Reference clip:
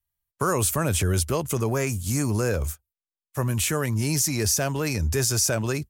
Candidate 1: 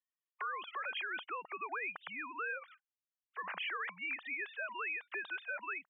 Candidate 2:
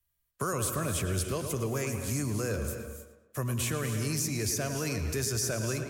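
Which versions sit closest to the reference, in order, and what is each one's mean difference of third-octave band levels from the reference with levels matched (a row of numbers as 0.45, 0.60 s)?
2, 1; 5.5, 23.0 dB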